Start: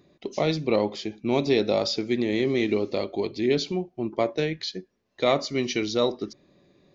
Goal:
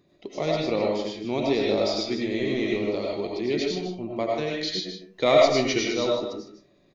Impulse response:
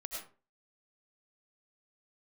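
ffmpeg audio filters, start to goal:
-filter_complex "[0:a]asettb=1/sr,asplit=3[s0][s1][s2];[s0]atrim=end=4.604[s3];[s1]atrim=start=4.6:end=5.79,asetpts=PTS-STARTPTS,afade=t=in:d=0.004:c=qsin,afade=t=out:st=1.186:d=0.004:c=qsin,acontrast=33[s4];[s2]atrim=start=5.786[s5];[s3][s4]acrossfade=d=0.004:c1=hsin:c2=qsin[s6];[s6][s5]acrossfade=d=0.004:c1=qsin:c2=hsin,aecho=1:1:154:0.316[s7];[1:a]atrim=start_sample=2205[s8];[s7][s8]afir=irnorm=-1:irlink=0"

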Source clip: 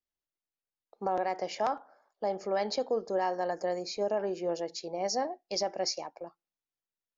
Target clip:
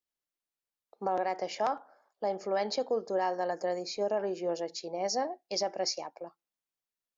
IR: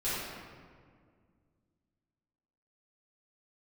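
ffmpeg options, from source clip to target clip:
-af "lowshelf=f=69:g=-11"

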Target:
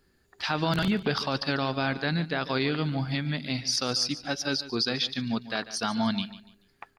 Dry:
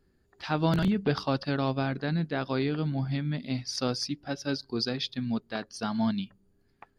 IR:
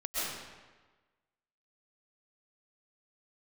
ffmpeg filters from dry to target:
-af "tiltshelf=f=810:g=-5,alimiter=limit=0.0891:level=0:latency=1:release=45,aecho=1:1:145|290|435:0.178|0.0533|0.016,volume=1.68"

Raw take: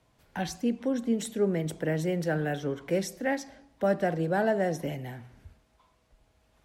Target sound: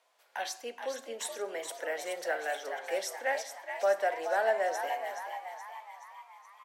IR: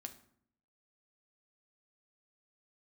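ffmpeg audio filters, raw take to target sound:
-filter_complex "[0:a]highpass=f=560:w=0.5412,highpass=f=560:w=1.3066,asplit=8[s0][s1][s2][s3][s4][s5][s6][s7];[s1]adelay=424,afreqshift=76,volume=0.398[s8];[s2]adelay=848,afreqshift=152,volume=0.219[s9];[s3]adelay=1272,afreqshift=228,volume=0.12[s10];[s4]adelay=1696,afreqshift=304,volume=0.0661[s11];[s5]adelay=2120,afreqshift=380,volume=0.0363[s12];[s6]adelay=2544,afreqshift=456,volume=0.02[s13];[s7]adelay=2968,afreqshift=532,volume=0.011[s14];[s0][s8][s9][s10][s11][s12][s13][s14]amix=inputs=8:normalize=0,asplit=2[s15][s16];[1:a]atrim=start_sample=2205[s17];[s16][s17]afir=irnorm=-1:irlink=0,volume=1.58[s18];[s15][s18]amix=inputs=2:normalize=0,volume=0.562"

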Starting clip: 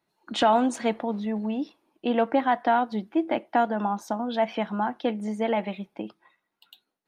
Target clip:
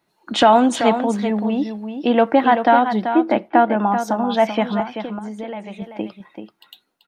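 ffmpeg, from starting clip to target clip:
-filter_complex "[0:a]asettb=1/sr,asplit=3[s0][s1][s2];[s0]atrim=end=3.114[s3];[s1]atrim=start=3.11:end=3.87,asetpts=PTS-STARTPTS,afade=t=in:d=0.004:c=qsin,afade=t=out:st=0.756:d=0.004:c=qsin,lowpass=2700[s4];[s2]atrim=start=3.866[s5];[s3][s4]acrossfade=d=0.004:c1=hsin:c2=qsin[s6];[s6][s5]acrossfade=d=0.004:c1=qsin:c2=hsin,asettb=1/sr,asplit=3[s7][s8][s9];[s7]atrim=end=4.804[s10];[s8]atrim=start=4.8:end=5.82,asetpts=PTS-STARTPTS,afade=t=in:d=0.004:c=qsin,afade=t=out:st=1.016:d=0.004:c=qsin,acompressor=threshold=0.0141:ratio=5[s11];[s9]atrim=start=5.816[s12];[s10][s11]acrossfade=d=0.004:c1=hsin:c2=qsin[s13];[s13][s12]acrossfade=d=0.004:c1=qsin:c2=hsin,aecho=1:1:385:0.376,volume=2.51"

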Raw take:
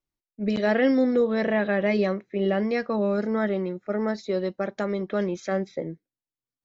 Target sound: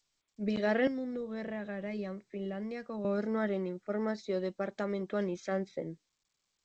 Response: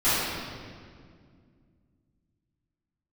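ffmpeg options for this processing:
-filter_complex "[0:a]asettb=1/sr,asplit=3[s0][s1][s2];[s0]atrim=end=0.874[s3];[s1]atrim=start=0.87:end=3.05,asetpts=PTS-STARTPTS,afade=t=in:d=0.004:c=qsin,afade=t=out:st=2.176:d=0.004:c=qsin,acrossover=split=160[s4][s5];[s5]acompressor=threshold=0.0178:ratio=2.5[s6];[s4][s6]amix=inputs=2:normalize=0[s7];[s2]atrim=start=3.046[s8];[s3][s7]acrossfade=d=0.004:c1=hsin:c2=qsin[s9];[s9][s8]acrossfade=d=0.004:c1=qsin:c2=hsin,volume=0.447" -ar 16000 -c:a g722

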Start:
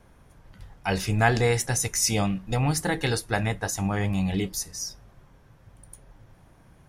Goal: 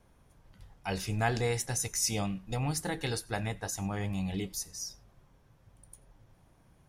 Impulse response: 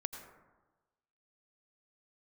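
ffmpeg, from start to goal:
-filter_complex "[0:a]asplit=2[s0][s1];[s1]highpass=f=1500:w=0.5412,highpass=f=1500:w=1.3066[s2];[1:a]atrim=start_sample=2205,afade=t=out:st=0.16:d=0.01,atrim=end_sample=7497[s3];[s2][s3]afir=irnorm=-1:irlink=0,volume=0.355[s4];[s0][s4]amix=inputs=2:normalize=0,volume=0.398"

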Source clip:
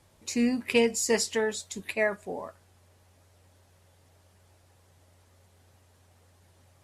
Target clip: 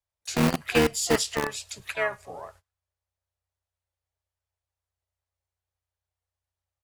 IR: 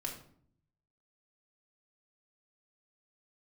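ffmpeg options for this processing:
-filter_complex "[0:a]agate=range=0.0355:threshold=0.00316:ratio=16:detection=peak,asplit=3[s0][s1][s2];[s1]asetrate=29433,aresample=44100,atempo=1.49831,volume=0.562[s3];[s2]asetrate=66075,aresample=44100,atempo=0.66742,volume=0.158[s4];[s0][s3][s4]amix=inputs=3:normalize=0,acrossover=split=130|470|2200[s5][s6][s7][s8];[s6]acrusher=bits=3:mix=0:aa=0.000001[s9];[s8]asplit=2[s10][s11];[s11]adelay=105,lowpass=f=3200:p=1,volume=0.0794,asplit=2[s12][s13];[s13]adelay=105,lowpass=f=3200:p=1,volume=0.4,asplit=2[s14][s15];[s15]adelay=105,lowpass=f=3200:p=1,volume=0.4[s16];[s10][s12][s14][s16]amix=inputs=4:normalize=0[s17];[s5][s9][s7][s17]amix=inputs=4:normalize=0"

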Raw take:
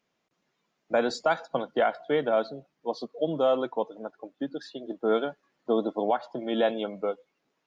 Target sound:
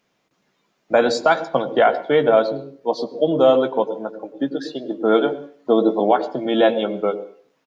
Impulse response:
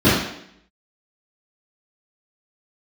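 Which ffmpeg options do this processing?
-filter_complex "[0:a]asplit=2[s0][s1];[s1]adelay=15,volume=0.299[s2];[s0][s2]amix=inputs=2:normalize=0,asplit=2[s3][s4];[1:a]atrim=start_sample=2205,asetrate=66150,aresample=44100,adelay=89[s5];[s4][s5]afir=irnorm=-1:irlink=0,volume=0.0119[s6];[s3][s6]amix=inputs=2:normalize=0,volume=2.66"

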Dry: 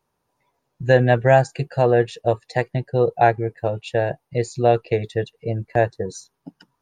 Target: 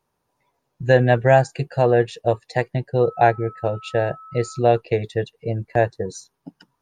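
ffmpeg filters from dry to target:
-filter_complex "[0:a]asettb=1/sr,asplit=3[s0][s1][s2];[s0]atrim=end=3.044[s3];[s1]atrim=start=3.04:end=4.59,asetpts=PTS-STARTPTS,afade=t=in:d=0.004:c=qsin,afade=t=out:st=1.546:d=0.004:c=qsin,aeval=exprs='val(0)+0.0112*sin(2*PI*1300*n/s)':c=same[s4];[s2]atrim=start=4.586[s5];[s3][s4]acrossfade=d=0.004:c1=hsin:c2=qsin[s6];[s6][s5]acrossfade=d=0.004:c1=qsin:c2=hsin"

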